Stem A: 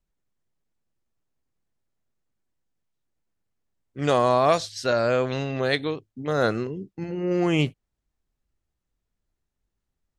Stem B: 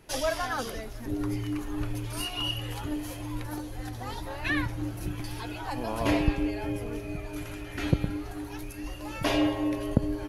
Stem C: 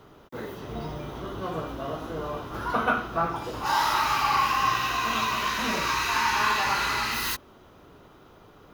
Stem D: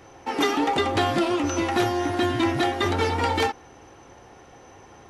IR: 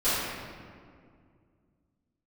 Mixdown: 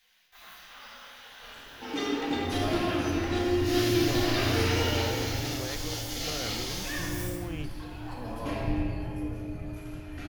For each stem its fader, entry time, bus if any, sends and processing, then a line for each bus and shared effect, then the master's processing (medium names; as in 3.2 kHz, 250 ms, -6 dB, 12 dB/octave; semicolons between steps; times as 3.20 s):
-8.0 dB, 0.00 s, no send, compression, threshold -28 dBFS, peak gain reduction 13 dB
-14.0 dB, 2.40 s, send -8 dB, peaking EQ 110 Hz +7 dB 1.5 oct
-5.0 dB, 0.00 s, send -7.5 dB, spectral gate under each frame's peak -20 dB weak
-11.0 dB, 1.55 s, send -7 dB, low-pass 6.2 kHz; peaking EQ 1 kHz -9.5 dB 1.9 oct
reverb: on, RT60 2.1 s, pre-delay 4 ms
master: none